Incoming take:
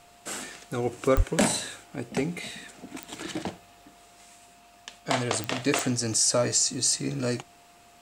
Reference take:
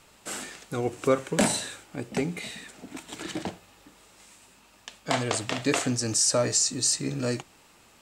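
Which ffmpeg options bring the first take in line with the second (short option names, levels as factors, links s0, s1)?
-filter_complex "[0:a]adeclick=t=4,bandreject=f=700:w=30,asplit=3[s0][s1][s2];[s0]afade=t=out:st=1.16:d=0.02[s3];[s1]highpass=f=140:w=0.5412,highpass=f=140:w=1.3066,afade=t=in:st=1.16:d=0.02,afade=t=out:st=1.28:d=0.02[s4];[s2]afade=t=in:st=1.28:d=0.02[s5];[s3][s4][s5]amix=inputs=3:normalize=0"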